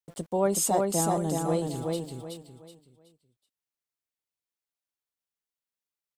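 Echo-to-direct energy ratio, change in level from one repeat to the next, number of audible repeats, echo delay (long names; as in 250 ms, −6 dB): −2.5 dB, −10.0 dB, 4, 374 ms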